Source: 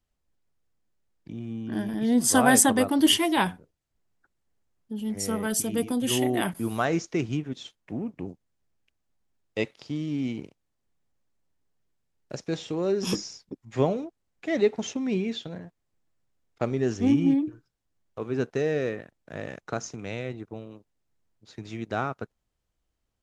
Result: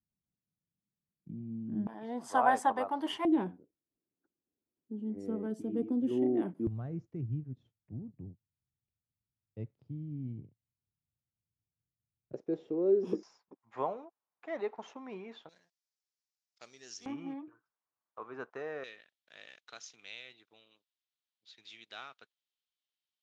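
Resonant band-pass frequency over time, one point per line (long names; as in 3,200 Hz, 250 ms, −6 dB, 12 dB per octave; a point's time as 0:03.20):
resonant band-pass, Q 2.6
170 Hz
from 0:01.87 900 Hz
from 0:03.25 310 Hz
from 0:06.67 110 Hz
from 0:12.33 390 Hz
from 0:13.23 990 Hz
from 0:15.49 5,300 Hz
from 0:17.06 1,100 Hz
from 0:18.84 3,500 Hz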